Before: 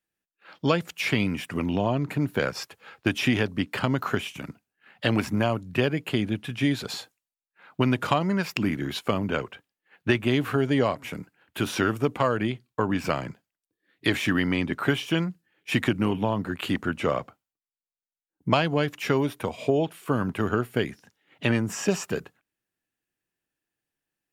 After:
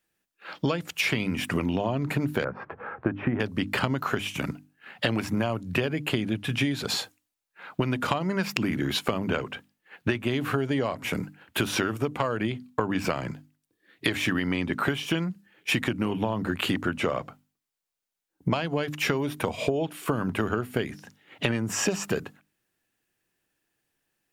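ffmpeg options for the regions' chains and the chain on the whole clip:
-filter_complex "[0:a]asettb=1/sr,asplit=3[a][b][c];[a]atrim=end=2.444[d];[b]atrim=start=2.44:end=3.4,asetpts=PTS-STARTPTS,afade=t=in:d=0.004:c=qsin,afade=t=out:st=0.956:d=0.004:c=qsin,lowpass=f=1.5k:w=0.5412,lowpass=f=1.5k:w=1.3066,acompressor=mode=upward:threshold=-37dB:ratio=2.5:attack=3.2:release=140:knee=2.83:detection=peak[e];[c]atrim=start=3.396[f];[d][e]acrossfade=d=0.004:c1=hsin:c2=qsin[g];[g][f]acrossfade=d=0.004:c1=qsin:c2=hsin,bandreject=f=50:t=h:w=6,bandreject=f=100:t=h:w=6,bandreject=f=150:t=h:w=6,bandreject=f=200:t=h:w=6,bandreject=f=250:t=h:w=6,bandreject=f=300:t=h:w=6,acompressor=threshold=-31dB:ratio=10,volume=8.5dB"

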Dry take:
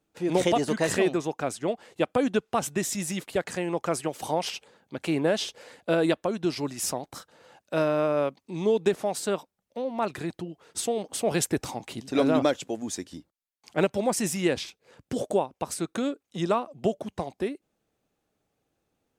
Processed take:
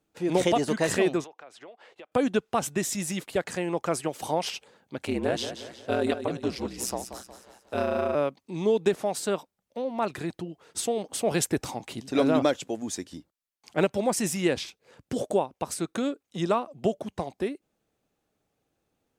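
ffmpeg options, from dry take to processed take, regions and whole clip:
-filter_complex "[0:a]asettb=1/sr,asplit=3[a][b][c];[a]atrim=end=1.244[d];[b]atrim=start=1.24:end=2.12,asetpts=PTS-STARTPTS,afade=t=in:d=0.004:c=qsin,afade=t=out:st=0.876:d=0.004:c=qsin,acrossover=split=400 4500:gain=0.126 1 0.158[e][f][g];[e][f][g]amix=inputs=3:normalize=0,acompressor=threshold=-43dB:ratio=8:attack=3.2:release=140:knee=1:detection=peak[h];[c]atrim=start=2.116[i];[d][h]acrossfade=d=0.004:c1=hsin:c2=qsin[j];[j][i]acrossfade=d=0.004:c1=qsin:c2=hsin,asettb=1/sr,asplit=3[k][l][m];[k]atrim=end=5.054[n];[l]atrim=start=5.05:end=8.15,asetpts=PTS-STARTPTS,afade=t=in:d=0.004:c=qsin,afade=t=out:st=3.096:d=0.004:c=qsin,aeval=exprs='val(0)*sin(2*PI*62*n/s)':c=same,aecho=1:1:181|362|543|724|905:0.316|0.136|0.0585|0.0251|0.0108,atrim=end_sample=136710[o];[m]atrim=start=8.146[p];[n][o]acrossfade=d=0.004:c1=hsin:c2=qsin[q];[q][p]acrossfade=d=0.004:c1=qsin:c2=hsin"

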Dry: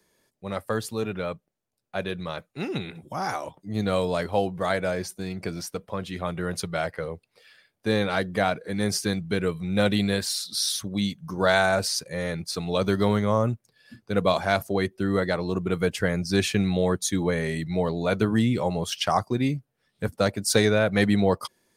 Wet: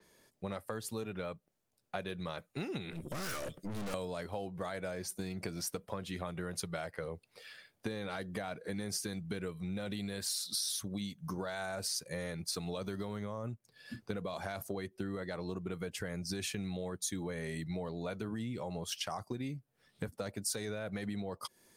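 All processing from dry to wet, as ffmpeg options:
-filter_complex "[0:a]asettb=1/sr,asplit=3[a][b][c];[a]atrim=end=2.924[d];[b]atrim=start=2.92:end=3.94,asetpts=PTS-STARTPTS,afade=t=in:d=0.004:c=qsin,afade=t=out:st=1.016:d=0.004:c=qsin,asuperstop=centerf=860:order=8:qfactor=1.5,acontrast=74,aeval=exprs='(tanh(70.8*val(0)+0.65)-tanh(0.65))/70.8':c=same[e];[c]atrim=start=3.936[f];[d][e]acrossfade=d=0.004:c1=hsin:c2=qsin[g];[g][f]acrossfade=d=0.004:c1=qsin:c2=hsin,alimiter=limit=-15.5dB:level=0:latency=1:release=36,acompressor=threshold=-38dB:ratio=10,adynamicequalizer=threshold=0.00178:dfrequency=6000:dqfactor=0.7:tfrequency=6000:tqfactor=0.7:attack=5:release=100:ratio=0.375:range=3:mode=boostabove:tftype=highshelf,volume=2dB"

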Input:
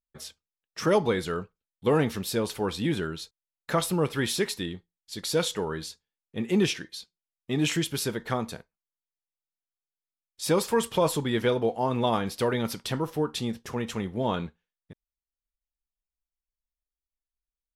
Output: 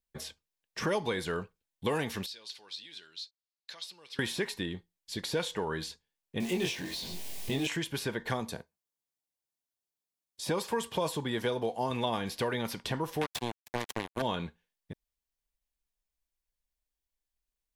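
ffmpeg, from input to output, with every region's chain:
-filter_complex "[0:a]asettb=1/sr,asplit=3[a][b][c];[a]atrim=end=2.264[d];[b]atrim=start=2.26:end=4.19,asetpts=PTS-STARTPTS,afade=t=in:d=0.004:c=qsin,afade=t=out:st=1.926:d=0.004:c=qsin,acompressor=threshold=-33dB:ratio=2:attack=3.2:release=140:knee=1:detection=peak,bandpass=f=4.4k:t=q:w=2.9[e];[c]atrim=start=4.186[f];[d][e]acrossfade=d=0.004:c1=hsin:c2=qsin[g];[g][f]acrossfade=d=0.004:c1=qsin:c2=hsin,asettb=1/sr,asplit=3[h][i][j];[h]atrim=end=6.404[k];[i]atrim=start=6.4:end=7.67,asetpts=PTS-STARTPTS,afade=t=in:d=0.004:c=qsin,afade=t=out:st=1.266:d=0.004:c=qsin,aeval=exprs='val(0)+0.5*0.02*sgn(val(0))':c=same,equalizer=f=1.4k:w=1.3:g=-12,asplit=2[l][m];[m]adelay=22,volume=-2dB[n];[l][n]amix=inputs=2:normalize=0,atrim=end_sample=56007[o];[j]atrim=start=7.666[p];[k][o]acrossfade=d=0.004:c1=hsin:c2=qsin[q];[q][p]acrossfade=d=0.004:c1=qsin:c2=hsin,asettb=1/sr,asplit=3[r][s][t];[r]atrim=end=8.404[u];[s]atrim=start=8.4:end=11.91,asetpts=PTS-STARTPTS,afade=t=in:d=0.004:c=qsin,afade=t=out:st=3.506:d=0.004:c=qsin,highpass=58,equalizer=f=2.2k:t=o:w=1.4:g=-5.5[v];[t]atrim=start=11.906[w];[u][v]acrossfade=d=0.004:c1=hsin:c2=qsin[x];[x][w]acrossfade=d=0.004:c1=qsin:c2=hsin,asettb=1/sr,asplit=3[y][z][aa];[y]atrim=end=13.214[ab];[z]atrim=start=13.21:end=14.22,asetpts=PTS-STARTPTS,afade=t=in:d=0.004:c=qsin,afade=t=out:st=1.006:d=0.004:c=qsin,aemphasis=mode=production:type=cd,acrusher=bits=3:mix=0:aa=0.5[ac];[aa]atrim=start=14.216[ad];[ab][ac]acrossfade=d=0.004:c1=hsin:c2=qsin[ae];[ae][ad]acrossfade=d=0.004:c1=qsin:c2=hsin,bandreject=f=1.3k:w=6.1,acrossover=split=740|1500|3400[af][ag][ah][ai];[af]acompressor=threshold=-38dB:ratio=4[aj];[ag]acompressor=threshold=-41dB:ratio=4[ak];[ah]acompressor=threshold=-46dB:ratio=4[al];[ai]acompressor=threshold=-48dB:ratio=4[am];[aj][ak][al][am]amix=inputs=4:normalize=0,volume=4dB"

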